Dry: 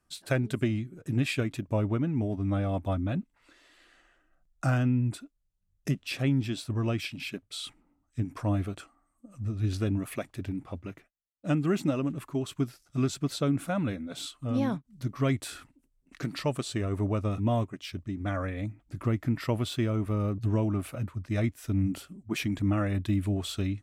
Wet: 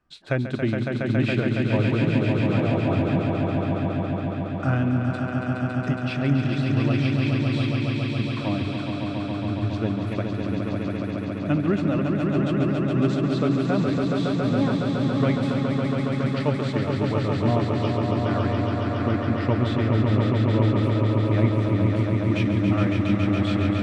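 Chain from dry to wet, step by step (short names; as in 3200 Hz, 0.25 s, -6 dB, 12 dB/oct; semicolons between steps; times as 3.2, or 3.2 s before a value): LPF 3200 Hz 12 dB/oct; notches 50/100 Hz; swelling echo 0.139 s, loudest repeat 5, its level -5 dB; gain +3 dB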